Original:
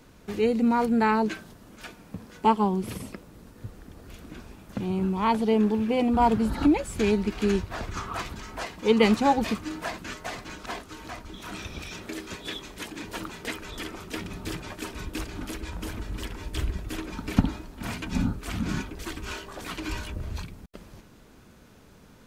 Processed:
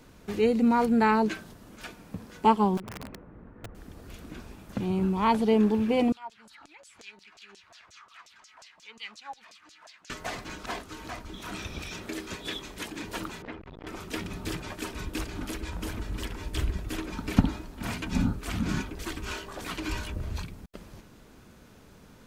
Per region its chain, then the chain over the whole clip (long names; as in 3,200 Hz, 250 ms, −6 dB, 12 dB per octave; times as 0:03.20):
0:02.77–0:03.75: low-pass filter 1,900 Hz 24 dB per octave + downward compressor 16 to 1, threshold −35 dBFS + wrap-around overflow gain 33.5 dB
0:06.12–0:10.10: auto-filter band-pass saw down 5.6 Hz 560–7,100 Hz + guitar amp tone stack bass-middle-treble 5-5-5 + upward compression, threshold −46 dBFS
0:13.42–0:13.87: converter with a step at zero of −43 dBFS + head-to-tape spacing loss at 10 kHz 43 dB + saturating transformer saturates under 610 Hz
whole clip: no processing